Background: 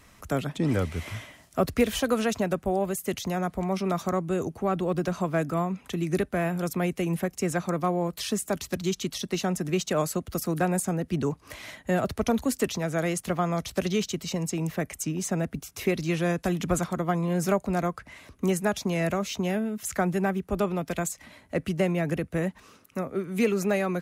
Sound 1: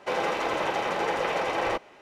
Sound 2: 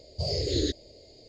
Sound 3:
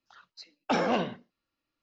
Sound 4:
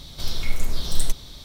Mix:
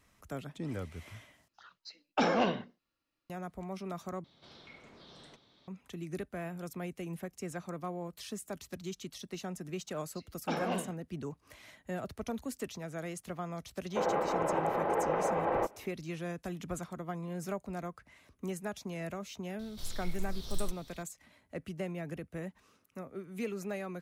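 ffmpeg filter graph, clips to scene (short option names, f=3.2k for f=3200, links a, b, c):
-filter_complex "[3:a]asplit=2[a][b];[4:a]asplit=2[c][d];[0:a]volume=-13dB[e];[c]highpass=210,lowpass=2.7k[f];[1:a]lowpass=1.1k[g];[d]highshelf=f=8.5k:g=3.5[h];[e]asplit=3[i][j][k];[i]atrim=end=1.484[l];[a]atrim=end=1.82,asetpts=PTS-STARTPTS,volume=-1.5dB[m];[j]atrim=start=3.296:end=4.244[n];[f]atrim=end=1.44,asetpts=PTS-STARTPTS,volume=-15.5dB[o];[k]atrim=start=5.676[p];[b]atrim=end=1.82,asetpts=PTS-STARTPTS,volume=-8.5dB,afade=t=in:d=0.004:c=hsin,afade=t=out:st=1.816:d=0.004:c=hsin,adelay=431298S[q];[g]atrim=end=2.01,asetpts=PTS-STARTPTS,volume=-2dB,afade=t=in:d=0.05,afade=t=out:st=1.96:d=0.05,adelay=13890[r];[h]atrim=end=1.44,asetpts=PTS-STARTPTS,volume=-15dB,afade=t=in:d=0.004:c=hsin,afade=t=out:st=1.436:d=0.004:c=hsin,adelay=19590[s];[l][m]acrossfade=d=0.004:c1=hsin:c2=hsin[t];[t][n]acrossfade=d=0.004:c1=hsin:c2=hsin[u];[u][o]acrossfade=d=0.004:c1=hsin:c2=hsin[v];[v][p]acrossfade=d=0.004:c1=hsin:c2=hsin[w];[w][q][r][s]amix=inputs=4:normalize=0"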